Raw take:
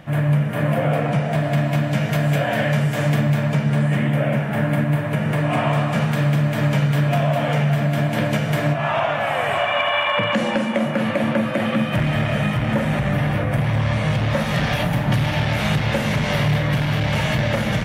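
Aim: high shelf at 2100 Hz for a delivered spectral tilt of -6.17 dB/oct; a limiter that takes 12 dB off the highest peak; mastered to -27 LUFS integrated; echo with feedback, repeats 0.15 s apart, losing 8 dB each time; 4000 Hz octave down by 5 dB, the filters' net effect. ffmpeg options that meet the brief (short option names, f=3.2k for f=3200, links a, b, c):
-af "highshelf=f=2.1k:g=-3.5,equalizer=f=4k:t=o:g=-4,alimiter=limit=-21.5dB:level=0:latency=1,aecho=1:1:150|300|450|600|750:0.398|0.159|0.0637|0.0255|0.0102,volume=1dB"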